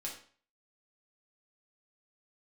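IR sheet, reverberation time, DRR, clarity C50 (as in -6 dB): 0.45 s, -3.0 dB, 6.5 dB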